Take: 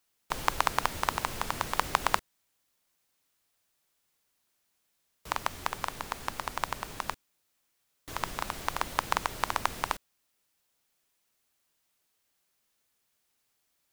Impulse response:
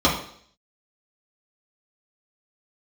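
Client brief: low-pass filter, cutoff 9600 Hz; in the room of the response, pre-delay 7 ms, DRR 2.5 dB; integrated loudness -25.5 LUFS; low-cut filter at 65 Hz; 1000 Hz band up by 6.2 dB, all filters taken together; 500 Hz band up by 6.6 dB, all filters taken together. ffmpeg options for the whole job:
-filter_complex "[0:a]highpass=65,lowpass=9.6k,equalizer=f=500:t=o:g=6.5,equalizer=f=1k:t=o:g=5.5,asplit=2[a][b];[1:a]atrim=start_sample=2205,adelay=7[c];[b][c]afir=irnorm=-1:irlink=0,volume=-21.5dB[d];[a][d]amix=inputs=2:normalize=0,volume=-0.5dB"

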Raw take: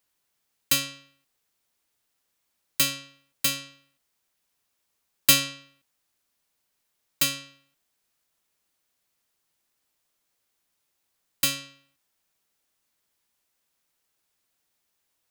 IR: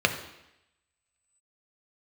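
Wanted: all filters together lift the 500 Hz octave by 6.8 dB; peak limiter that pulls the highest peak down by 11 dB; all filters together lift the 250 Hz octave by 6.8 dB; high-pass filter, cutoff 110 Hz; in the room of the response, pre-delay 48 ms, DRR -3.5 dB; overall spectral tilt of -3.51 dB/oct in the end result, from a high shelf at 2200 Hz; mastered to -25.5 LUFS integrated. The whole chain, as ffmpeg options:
-filter_complex "[0:a]highpass=110,equalizer=f=250:t=o:g=6,equalizer=f=500:t=o:g=7,highshelf=f=2.2k:g=-7,alimiter=limit=-16.5dB:level=0:latency=1,asplit=2[a][b];[1:a]atrim=start_sample=2205,adelay=48[c];[b][c]afir=irnorm=-1:irlink=0,volume=-11.5dB[d];[a][d]amix=inputs=2:normalize=0,volume=4dB"

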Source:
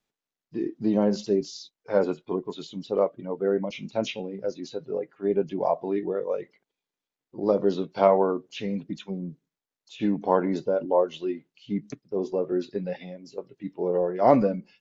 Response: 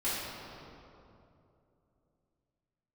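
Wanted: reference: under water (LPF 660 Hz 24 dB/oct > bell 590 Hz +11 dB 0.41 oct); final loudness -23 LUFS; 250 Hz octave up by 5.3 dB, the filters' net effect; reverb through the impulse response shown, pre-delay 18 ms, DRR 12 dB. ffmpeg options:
-filter_complex "[0:a]equalizer=f=250:t=o:g=6.5,asplit=2[a][b];[1:a]atrim=start_sample=2205,adelay=18[c];[b][c]afir=irnorm=-1:irlink=0,volume=-20dB[d];[a][d]amix=inputs=2:normalize=0,lowpass=f=660:w=0.5412,lowpass=f=660:w=1.3066,equalizer=f=590:t=o:w=0.41:g=11,volume=-2.5dB"

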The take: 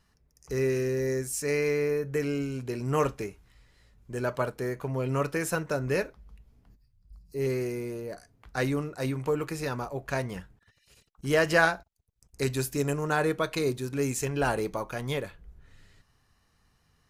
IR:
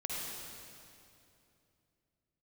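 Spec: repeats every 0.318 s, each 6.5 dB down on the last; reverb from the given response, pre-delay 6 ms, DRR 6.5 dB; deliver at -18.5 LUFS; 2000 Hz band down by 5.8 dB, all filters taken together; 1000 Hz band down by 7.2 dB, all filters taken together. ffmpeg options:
-filter_complex "[0:a]equalizer=f=1k:t=o:g=-9,equalizer=f=2k:t=o:g=-4,aecho=1:1:318|636|954|1272|1590|1908:0.473|0.222|0.105|0.0491|0.0231|0.0109,asplit=2[a][b];[1:a]atrim=start_sample=2205,adelay=6[c];[b][c]afir=irnorm=-1:irlink=0,volume=-9.5dB[d];[a][d]amix=inputs=2:normalize=0,volume=11.5dB"

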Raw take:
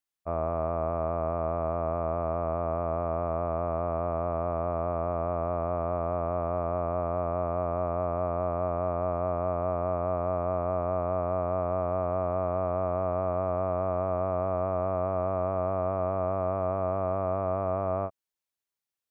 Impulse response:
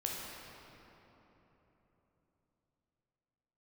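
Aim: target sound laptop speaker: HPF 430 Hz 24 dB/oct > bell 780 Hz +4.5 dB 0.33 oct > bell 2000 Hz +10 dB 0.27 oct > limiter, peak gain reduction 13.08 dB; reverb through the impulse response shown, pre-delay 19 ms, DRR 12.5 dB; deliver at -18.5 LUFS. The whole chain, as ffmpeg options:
-filter_complex "[0:a]asplit=2[a][b];[1:a]atrim=start_sample=2205,adelay=19[c];[b][c]afir=irnorm=-1:irlink=0,volume=-15.5dB[d];[a][d]amix=inputs=2:normalize=0,highpass=f=430:w=0.5412,highpass=f=430:w=1.3066,equalizer=f=780:t=o:w=0.33:g=4.5,equalizer=f=2k:t=o:w=0.27:g=10,volume=21dB,alimiter=limit=-10dB:level=0:latency=1"

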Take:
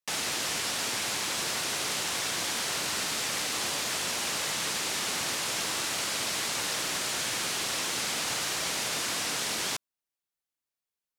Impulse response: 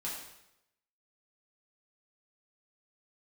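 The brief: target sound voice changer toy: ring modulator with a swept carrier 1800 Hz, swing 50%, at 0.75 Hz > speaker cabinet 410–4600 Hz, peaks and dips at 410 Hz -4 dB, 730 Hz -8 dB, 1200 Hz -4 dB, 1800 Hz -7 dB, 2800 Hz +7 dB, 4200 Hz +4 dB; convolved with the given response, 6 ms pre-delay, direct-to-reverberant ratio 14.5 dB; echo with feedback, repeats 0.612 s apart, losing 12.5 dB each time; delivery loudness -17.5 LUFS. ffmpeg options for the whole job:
-filter_complex "[0:a]aecho=1:1:612|1224|1836:0.237|0.0569|0.0137,asplit=2[a][b];[1:a]atrim=start_sample=2205,adelay=6[c];[b][c]afir=irnorm=-1:irlink=0,volume=-16.5dB[d];[a][d]amix=inputs=2:normalize=0,aeval=exprs='val(0)*sin(2*PI*1800*n/s+1800*0.5/0.75*sin(2*PI*0.75*n/s))':c=same,highpass=410,equalizer=f=410:t=q:w=4:g=-4,equalizer=f=730:t=q:w=4:g=-8,equalizer=f=1.2k:t=q:w=4:g=-4,equalizer=f=1.8k:t=q:w=4:g=-7,equalizer=f=2.8k:t=q:w=4:g=7,equalizer=f=4.2k:t=q:w=4:g=4,lowpass=f=4.6k:w=0.5412,lowpass=f=4.6k:w=1.3066,volume=15dB"

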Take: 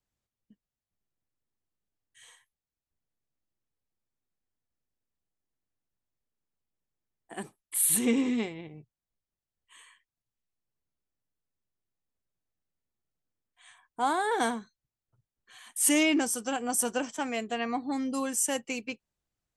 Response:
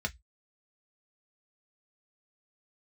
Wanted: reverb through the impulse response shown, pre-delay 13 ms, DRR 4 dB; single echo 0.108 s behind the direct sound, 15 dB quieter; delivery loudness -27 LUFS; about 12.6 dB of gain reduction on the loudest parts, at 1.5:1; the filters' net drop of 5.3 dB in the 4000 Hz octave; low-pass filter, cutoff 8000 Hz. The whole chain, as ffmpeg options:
-filter_complex "[0:a]lowpass=8k,equalizer=f=4k:t=o:g=-8.5,acompressor=threshold=-58dB:ratio=1.5,aecho=1:1:108:0.178,asplit=2[a][b];[1:a]atrim=start_sample=2205,adelay=13[c];[b][c]afir=irnorm=-1:irlink=0,volume=-8dB[d];[a][d]amix=inputs=2:normalize=0,volume=13dB"

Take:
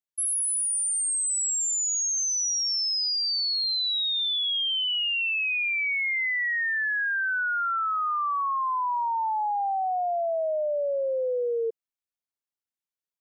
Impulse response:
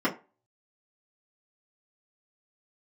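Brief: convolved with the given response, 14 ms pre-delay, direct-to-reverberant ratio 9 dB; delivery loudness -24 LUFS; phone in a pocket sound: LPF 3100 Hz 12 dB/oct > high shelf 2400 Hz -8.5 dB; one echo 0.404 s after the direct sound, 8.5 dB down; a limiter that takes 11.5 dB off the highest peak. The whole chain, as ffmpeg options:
-filter_complex "[0:a]alimiter=level_in=11dB:limit=-24dB:level=0:latency=1,volume=-11dB,aecho=1:1:404:0.376,asplit=2[a][b];[1:a]atrim=start_sample=2205,adelay=14[c];[b][c]afir=irnorm=-1:irlink=0,volume=-21dB[d];[a][d]amix=inputs=2:normalize=0,lowpass=3.1k,highshelf=f=2.4k:g=-8.5,volume=15.5dB"

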